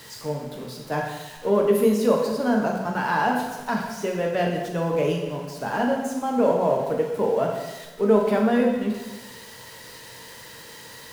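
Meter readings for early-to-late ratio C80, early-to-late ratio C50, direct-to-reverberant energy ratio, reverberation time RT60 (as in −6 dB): 5.5 dB, 3.5 dB, 0.0 dB, 1.2 s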